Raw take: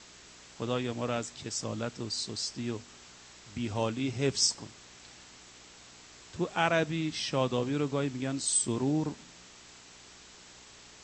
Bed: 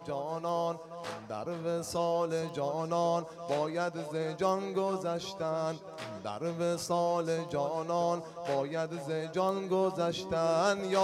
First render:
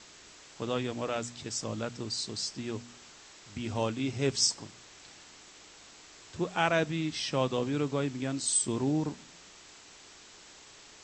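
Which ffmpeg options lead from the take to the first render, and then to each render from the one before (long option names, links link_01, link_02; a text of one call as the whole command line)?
ffmpeg -i in.wav -af "bandreject=frequency=60:width_type=h:width=4,bandreject=frequency=120:width_type=h:width=4,bandreject=frequency=180:width_type=h:width=4,bandreject=frequency=240:width_type=h:width=4" out.wav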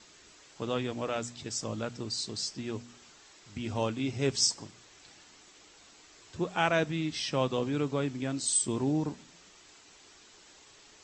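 ffmpeg -i in.wav -af "afftdn=noise_reduction=6:noise_floor=-54" out.wav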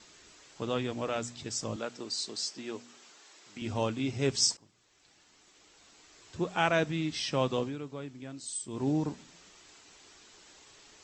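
ffmpeg -i in.wav -filter_complex "[0:a]asettb=1/sr,asplit=3[link_01][link_02][link_03];[link_01]atrim=end=1.764[link_04];[link_02]atrim=start=1.76:end=3.62,asetpts=PTS-STARTPTS,afade=type=in:duration=0.004:curve=qsin,afade=type=out:start_time=1.856:duration=0.004:curve=qsin,highpass=290[link_05];[link_03]atrim=start=3.616[link_06];[link_04][link_05]acrossfade=duration=0.004:curve1=hsin:curve2=qsin[link_07];[link_07][link_06]acrossfade=duration=0.004:curve1=qsin:curve2=hsin,asplit=4[link_08][link_09][link_10][link_11];[link_08]atrim=end=4.57,asetpts=PTS-STARTPTS,afade=type=out:start_time=4.566:duration=0.004:curve=hsin:silence=0.112202[link_12];[link_09]atrim=start=4.57:end=7.77,asetpts=PTS-STARTPTS,afade=type=in:duration=1.86:silence=0.112202,afade=type=out:start_time=3.02:duration=0.18:silence=0.316228[link_13];[link_10]atrim=start=7.77:end=8.7,asetpts=PTS-STARTPTS,volume=-10dB[link_14];[link_11]atrim=start=8.7,asetpts=PTS-STARTPTS,afade=type=in:duration=0.18:silence=0.316228[link_15];[link_12][link_13][link_14][link_15]concat=n=4:v=0:a=1" out.wav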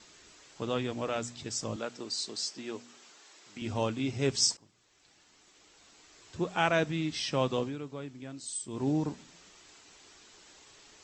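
ffmpeg -i in.wav -af anull out.wav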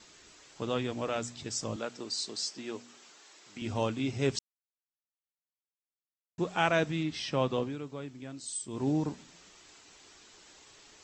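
ffmpeg -i in.wav -filter_complex "[0:a]asettb=1/sr,asplit=3[link_01][link_02][link_03];[link_01]atrim=end=7.034[link_04];[link_02]atrim=start=7.03:end=7.7,asetpts=PTS-STARTPTS,afade=type=in:duration=0.004:curve=qsin,afade=type=out:start_time=0.666:duration=0.004:curve=qsin,highshelf=frequency=5900:gain=-10[link_05];[link_03]atrim=start=7.696[link_06];[link_04][link_05]acrossfade=duration=0.004:curve1=hsin:curve2=qsin[link_07];[link_07][link_06]acrossfade=duration=0.004:curve1=qsin:curve2=hsin,asplit=3[link_08][link_09][link_10];[link_08]atrim=end=4.39,asetpts=PTS-STARTPTS,afade=type=out:start_time=4.386:duration=0.004:curve=hsin[link_11];[link_09]atrim=start=4.39:end=6.38,asetpts=PTS-STARTPTS,volume=0[link_12];[link_10]atrim=start=6.38,asetpts=PTS-STARTPTS,afade=type=in:duration=0.004:curve=hsin[link_13];[link_11][link_12][link_13]concat=n=3:v=0:a=1" out.wav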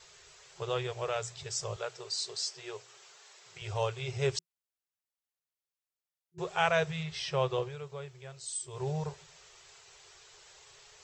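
ffmpeg -i in.wav -af "afftfilt=real='re*(1-between(b*sr/4096,170,360))':imag='im*(1-between(b*sr/4096,170,360))':win_size=4096:overlap=0.75" out.wav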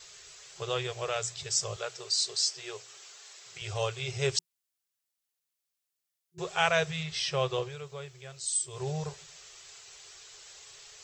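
ffmpeg -i in.wav -af "highshelf=frequency=2600:gain=8.5,bandreject=frequency=920:width=13" out.wav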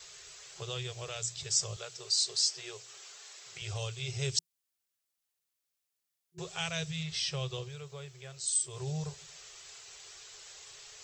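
ffmpeg -i in.wav -filter_complex "[0:a]acrossover=split=250|3000[link_01][link_02][link_03];[link_02]acompressor=threshold=-48dB:ratio=2.5[link_04];[link_01][link_04][link_03]amix=inputs=3:normalize=0" out.wav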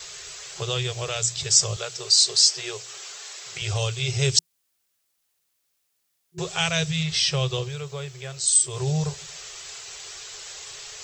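ffmpeg -i in.wav -af "volume=11.5dB" out.wav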